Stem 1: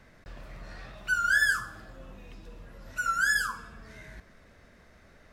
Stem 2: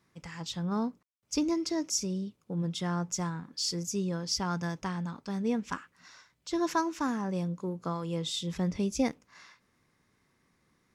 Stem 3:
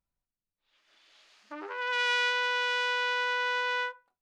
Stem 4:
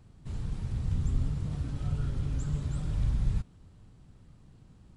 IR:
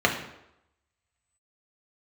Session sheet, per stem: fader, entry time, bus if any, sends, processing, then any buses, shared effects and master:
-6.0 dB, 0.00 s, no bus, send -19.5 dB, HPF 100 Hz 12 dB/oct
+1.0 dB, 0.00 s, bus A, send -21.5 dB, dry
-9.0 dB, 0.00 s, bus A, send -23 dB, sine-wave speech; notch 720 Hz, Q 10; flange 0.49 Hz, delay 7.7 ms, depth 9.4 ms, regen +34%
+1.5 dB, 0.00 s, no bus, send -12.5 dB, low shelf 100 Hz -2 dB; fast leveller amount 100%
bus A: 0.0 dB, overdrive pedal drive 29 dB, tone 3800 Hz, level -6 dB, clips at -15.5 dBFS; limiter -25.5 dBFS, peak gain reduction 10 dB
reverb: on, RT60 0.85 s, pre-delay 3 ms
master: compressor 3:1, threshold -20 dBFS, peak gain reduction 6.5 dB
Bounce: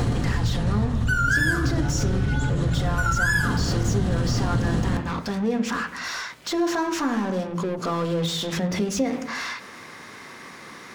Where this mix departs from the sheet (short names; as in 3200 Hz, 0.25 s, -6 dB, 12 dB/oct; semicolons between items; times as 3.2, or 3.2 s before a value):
stem 1 -6.0 dB -> +6.0 dB; stem 2 +1.0 dB -> +11.5 dB